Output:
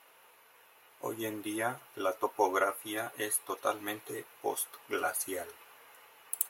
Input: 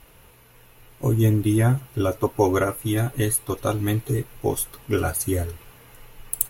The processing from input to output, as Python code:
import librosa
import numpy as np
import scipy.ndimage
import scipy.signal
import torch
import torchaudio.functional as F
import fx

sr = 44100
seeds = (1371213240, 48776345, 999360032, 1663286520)

y = scipy.signal.sosfilt(scipy.signal.butter(2, 770.0, 'highpass', fs=sr, output='sos'), x)
y = fx.high_shelf(y, sr, hz=2000.0, db=-8.5)